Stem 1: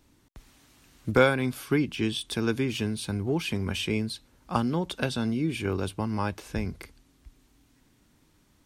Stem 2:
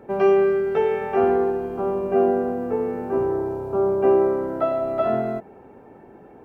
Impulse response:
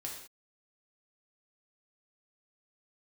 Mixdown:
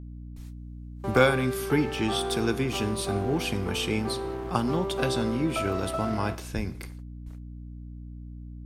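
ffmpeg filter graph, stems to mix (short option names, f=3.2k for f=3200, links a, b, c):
-filter_complex "[0:a]highshelf=f=5k:g=5.5,volume=-2dB,asplit=2[a][b];[b]volume=-10dB[c];[1:a]equalizer=f=1.2k:t=o:w=0.57:g=8.5,acompressor=threshold=-35dB:ratio=2,aeval=exprs='sgn(val(0))*max(abs(val(0))-0.00944,0)':c=same,adelay=950,volume=-2.5dB,asplit=2[d][e];[e]volume=-7.5dB[f];[2:a]atrim=start_sample=2205[g];[c][f]amix=inputs=2:normalize=0[h];[h][g]afir=irnorm=-1:irlink=0[i];[a][d][i]amix=inputs=3:normalize=0,agate=range=-30dB:threshold=-52dB:ratio=16:detection=peak,aeval=exprs='val(0)+0.0112*(sin(2*PI*60*n/s)+sin(2*PI*2*60*n/s)/2+sin(2*PI*3*60*n/s)/3+sin(2*PI*4*60*n/s)/4+sin(2*PI*5*60*n/s)/5)':c=same"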